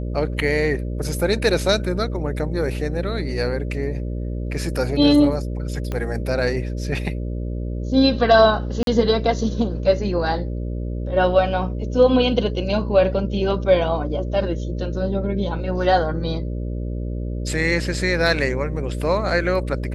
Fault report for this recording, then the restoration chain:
buzz 60 Hz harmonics 10 -26 dBFS
5.92 pop -14 dBFS
8.83–8.87 gap 42 ms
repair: de-click; de-hum 60 Hz, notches 10; interpolate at 8.83, 42 ms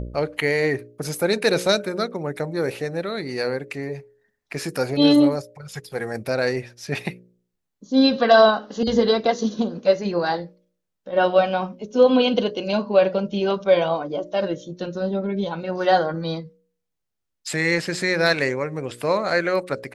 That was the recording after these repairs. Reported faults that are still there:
5.92 pop

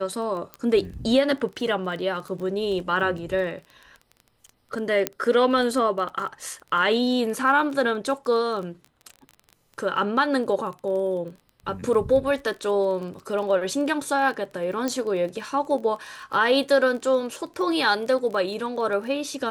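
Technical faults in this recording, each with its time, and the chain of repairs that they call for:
crackle 20/s -32 dBFS
0.54 pop -19 dBFS
5.07 pop -6 dBFS
14.88 pop -13 dBFS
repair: de-click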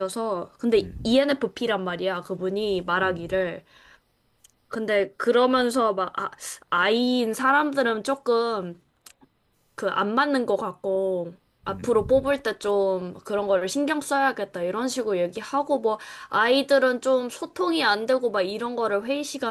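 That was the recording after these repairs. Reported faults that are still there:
14.88 pop

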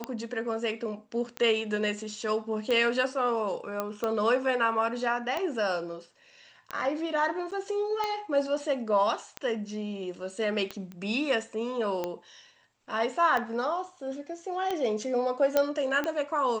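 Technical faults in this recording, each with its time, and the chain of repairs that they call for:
tick 45 rpm -17 dBFS
3.8 pop -16 dBFS
7.51–7.52 gap 7.4 ms
10.92 pop -29 dBFS
15.57 pop -10 dBFS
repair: de-click; interpolate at 7.51, 7.4 ms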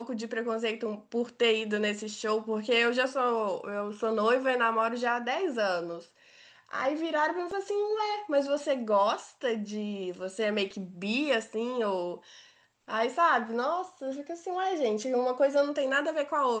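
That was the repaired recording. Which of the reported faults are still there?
none

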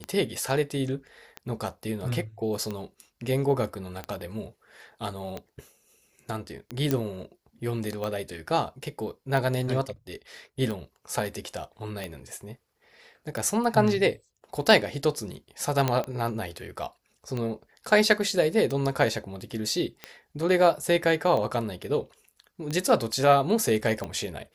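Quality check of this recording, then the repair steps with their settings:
tick 45 rpm -19 dBFS
6.91 pop -11 dBFS
15.88 pop -10 dBFS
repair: de-click

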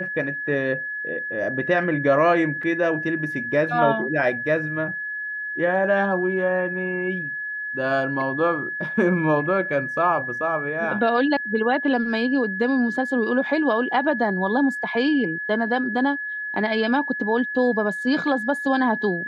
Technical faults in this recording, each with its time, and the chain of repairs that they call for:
tone 1700 Hz -27 dBFS
2.63 gap 4.1 ms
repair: notch 1700 Hz, Q 30; interpolate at 2.63, 4.1 ms

